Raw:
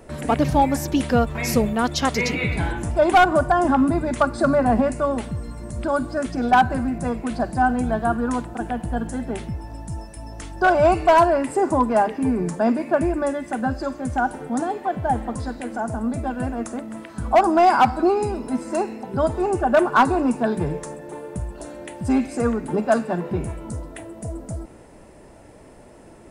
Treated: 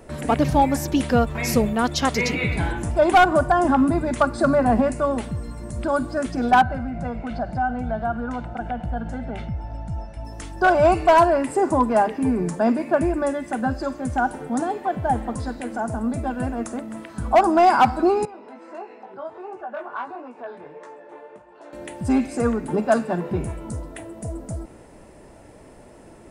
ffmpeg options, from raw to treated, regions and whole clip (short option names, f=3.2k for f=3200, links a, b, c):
-filter_complex "[0:a]asettb=1/sr,asplit=3[a][b][c];[a]atrim=end=6.624[d];[b]atrim=start=6.62:end=10.25,asetpts=PTS-STARTPTS,afade=t=in:d=0.004:c=qsin,afade=t=out:st=3.626:d=0.004:c=qsin,lowpass=3.5k,acompressor=threshold=-27dB:ratio=2:attack=3.2:release=140:knee=1:detection=peak,aecho=1:1:1.4:0.54,atrim=end_sample=160083[e];[c]atrim=start=10.246[f];[d][e]acrossfade=d=0.004:c1=hsin:c2=qsin[g];[g][f]acrossfade=d=0.004:c1=qsin:c2=hsin,asettb=1/sr,asplit=3[h][i][j];[h]atrim=end=18.254[k];[i]atrim=start=18.25:end=21.73,asetpts=PTS-STARTPTS,afade=t=in:d=0.004:c=qsin,afade=t=out:st=3.476:d=0.004:c=qsin,flanger=delay=16:depth=5.8:speed=1.5,acompressor=threshold=-31dB:ratio=2.5:attack=3.2:release=140:knee=1:detection=peak,highpass=490,lowpass=2.7k[l];[j]atrim=start=21.726[m];[k][l]acrossfade=d=0.004:c1=hsin:c2=qsin[n];[n][m]acrossfade=d=0.004:c1=qsin:c2=hsin"